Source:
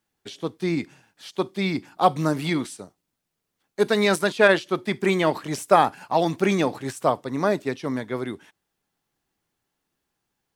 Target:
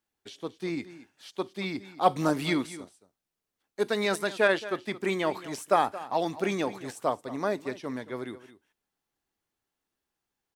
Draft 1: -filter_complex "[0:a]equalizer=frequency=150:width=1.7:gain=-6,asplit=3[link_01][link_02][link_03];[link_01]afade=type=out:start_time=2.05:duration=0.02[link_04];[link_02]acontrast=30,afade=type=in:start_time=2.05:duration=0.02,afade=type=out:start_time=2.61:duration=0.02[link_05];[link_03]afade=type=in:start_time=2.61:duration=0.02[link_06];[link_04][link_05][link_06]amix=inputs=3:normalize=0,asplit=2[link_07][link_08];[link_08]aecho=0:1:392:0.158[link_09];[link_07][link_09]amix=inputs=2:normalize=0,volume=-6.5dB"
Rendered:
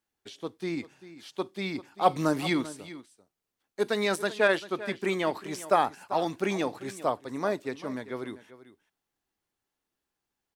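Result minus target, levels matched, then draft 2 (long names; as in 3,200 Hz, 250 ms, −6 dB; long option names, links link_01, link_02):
echo 170 ms late
-filter_complex "[0:a]equalizer=frequency=150:width=1.7:gain=-6,asplit=3[link_01][link_02][link_03];[link_01]afade=type=out:start_time=2.05:duration=0.02[link_04];[link_02]acontrast=30,afade=type=in:start_time=2.05:duration=0.02,afade=type=out:start_time=2.61:duration=0.02[link_05];[link_03]afade=type=in:start_time=2.61:duration=0.02[link_06];[link_04][link_05][link_06]amix=inputs=3:normalize=0,asplit=2[link_07][link_08];[link_08]aecho=0:1:222:0.158[link_09];[link_07][link_09]amix=inputs=2:normalize=0,volume=-6.5dB"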